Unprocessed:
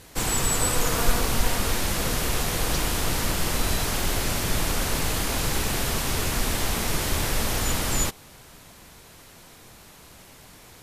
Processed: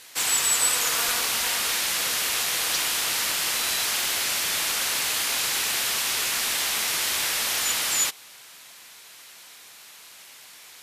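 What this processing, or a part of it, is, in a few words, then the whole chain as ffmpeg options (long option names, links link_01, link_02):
filter by subtraction: -filter_complex "[0:a]asplit=2[link_01][link_02];[link_02]lowpass=2800,volume=-1[link_03];[link_01][link_03]amix=inputs=2:normalize=0,volume=3.5dB"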